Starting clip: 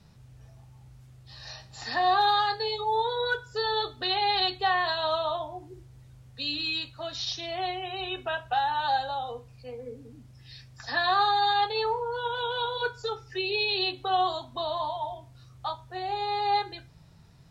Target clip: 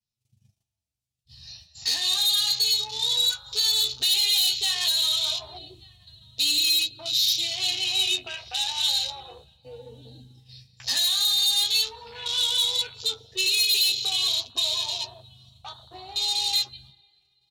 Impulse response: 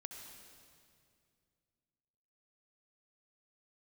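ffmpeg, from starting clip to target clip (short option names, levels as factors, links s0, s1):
-filter_complex "[0:a]flanger=delay=8.4:depth=4.9:regen=-41:speed=0.39:shape=triangular,acrossover=split=170|1900[s0][s1][s2];[s1]acompressor=threshold=0.00794:ratio=12[s3];[s0][s3][s2]amix=inputs=3:normalize=0,aecho=1:1:1186:0.158,agate=range=0.0794:threshold=0.00251:ratio=16:detection=peak,asplit=2[s4][s5];[s5]bass=f=250:g=4,treble=f=4000:g=-3[s6];[1:a]atrim=start_sample=2205[s7];[s6][s7]afir=irnorm=-1:irlink=0,volume=0.944[s8];[s4][s8]amix=inputs=2:normalize=0,adynamicequalizer=threshold=0.00398:dfrequency=3900:dqfactor=4.2:tfrequency=3900:tqfactor=4.2:attack=5:release=100:ratio=0.375:range=1.5:mode=boostabove:tftype=bell,afwtdn=0.01,flanger=delay=8.7:depth=8:regen=42:speed=0.14:shape=triangular,asoftclip=type=tanh:threshold=0.0178,aexciter=amount=8.6:drive=3.3:freq=2400,alimiter=limit=0.158:level=0:latency=1:release=413,volume=1.41"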